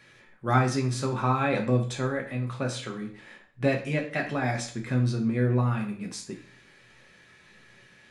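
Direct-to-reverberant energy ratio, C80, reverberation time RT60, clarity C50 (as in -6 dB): 1.0 dB, 13.0 dB, 0.50 s, 10.0 dB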